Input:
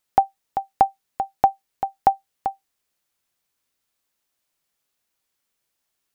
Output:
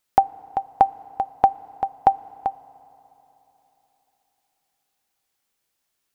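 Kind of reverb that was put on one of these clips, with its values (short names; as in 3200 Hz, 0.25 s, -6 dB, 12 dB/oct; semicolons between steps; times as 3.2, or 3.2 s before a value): FDN reverb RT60 3.6 s, high-frequency decay 0.8×, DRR 18.5 dB; gain +1 dB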